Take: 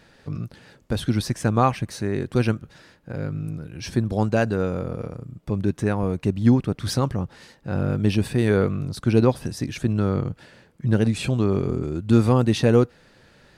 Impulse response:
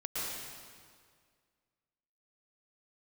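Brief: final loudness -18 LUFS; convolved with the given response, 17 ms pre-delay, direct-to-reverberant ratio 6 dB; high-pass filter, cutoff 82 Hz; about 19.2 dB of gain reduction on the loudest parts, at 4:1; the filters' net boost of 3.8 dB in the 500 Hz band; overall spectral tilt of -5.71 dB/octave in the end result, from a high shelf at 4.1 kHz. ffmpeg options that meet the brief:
-filter_complex "[0:a]highpass=82,equalizer=f=500:t=o:g=4.5,highshelf=f=4100:g=6,acompressor=threshold=0.02:ratio=4,asplit=2[s0][s1];[1:a]atrim=start_sample=2205,adelay=17[s2];[s1][s2]afir=irnorm=-1:irlink=0,volume=0.299[s3];[s0][s3]amix=inputs=2:normalize=0,volume=7.94"

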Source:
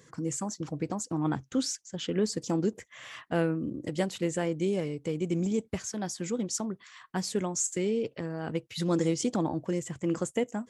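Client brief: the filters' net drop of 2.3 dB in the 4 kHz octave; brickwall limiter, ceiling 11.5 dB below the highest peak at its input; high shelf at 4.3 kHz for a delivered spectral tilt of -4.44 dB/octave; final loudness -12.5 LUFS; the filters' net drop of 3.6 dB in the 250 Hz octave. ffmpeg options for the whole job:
-af "equalizer=f=250:t=o:g=-5.5,equalizer=f=4000:t=o:g=-8.5,highshelf=f=4300:g=7,volume=14.1,alimiter=limit=0.75:level=0:latency=1"

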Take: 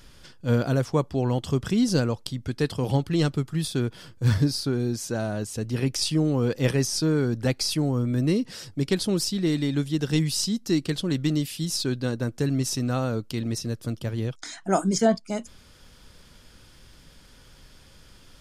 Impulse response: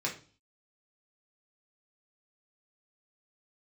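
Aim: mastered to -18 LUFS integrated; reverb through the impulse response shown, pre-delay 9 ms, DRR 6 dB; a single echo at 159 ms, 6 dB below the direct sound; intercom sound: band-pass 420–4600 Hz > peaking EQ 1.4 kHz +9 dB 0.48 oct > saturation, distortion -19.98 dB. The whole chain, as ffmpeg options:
-filter_complex "[0:a]aecho=1:1:159:0.501,asplit=2[s0][s1];[1:a]atrim=start_sample=2205,adelay=9[s2];[s1][s2]afir=irnorm=-1:irlink=0,volume=0.282[s3];[s0][s3]amix=inputs=2:normalize=0,highpass=420,lowpass=4600,equalizer=f=1400:t=o:w=0.48:g=9,asoftclip=threshold=0.211,volume=3.76"

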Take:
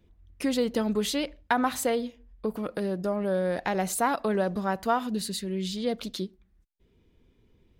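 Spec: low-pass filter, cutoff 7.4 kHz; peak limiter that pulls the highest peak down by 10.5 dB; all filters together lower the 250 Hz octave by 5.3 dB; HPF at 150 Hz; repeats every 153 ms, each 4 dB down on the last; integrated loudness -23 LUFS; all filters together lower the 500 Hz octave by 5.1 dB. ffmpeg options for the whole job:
-af "highpass=150,lowpass=7400,equalizer=f=250:t=o:g=-4.5,equalizer=f=500:t=o:g=-5,alimiter=limit=0.0794:level=0:latency=1,aecho=1:1:153|306|459|612|765|918|1071|1224|1377:0.631|0.398|0.25|0.158|0.0994|0.0626|0.0394|0.0249|0.0157,volume=2.82"

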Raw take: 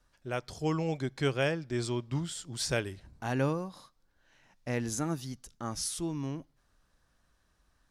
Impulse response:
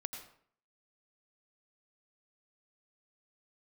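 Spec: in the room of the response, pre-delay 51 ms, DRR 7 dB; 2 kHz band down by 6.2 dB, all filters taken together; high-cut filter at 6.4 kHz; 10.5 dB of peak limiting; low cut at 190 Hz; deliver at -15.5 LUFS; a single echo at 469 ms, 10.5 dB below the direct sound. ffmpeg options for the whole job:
-filter_complex "[0:a]highpass=190,lowpass=6400,equalizer=f=2000:t=o:g=-8.5,alimiter=level_in=1.68:limit=0.0631:level=0:latency=1,volume=0.596,aecho=1:1:469:0.299,asplit=2[s0][s1];[1:a]atrim=start_sample=2205,adelay=51[s2];[s1][s2]afir=irnorm=-1:irlink=0,volume=0.501[s3];[s0][s3]amix=inputs=2:normalize=0,volume=15"

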